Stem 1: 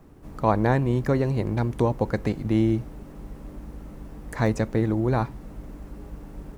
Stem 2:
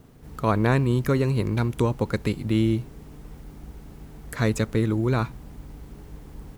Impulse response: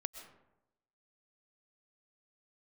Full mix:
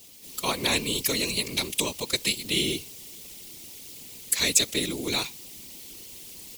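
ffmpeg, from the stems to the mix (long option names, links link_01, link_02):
-filter_complex "[0:a]volume=-15.5dB[link_01];[1:a]aexciter=amount=15:drive=4.6:freq=2300,highpass=210,volume=-2dB[link_02];[link_01][link_02]amix=inputs=2:normalize=0,afftfilt=real='hypot(re,im)*cos(2*PI*random(0))':imag='hypot(re,im)*sin(2*PI*random(1))':win_size=512:overlap=0.75"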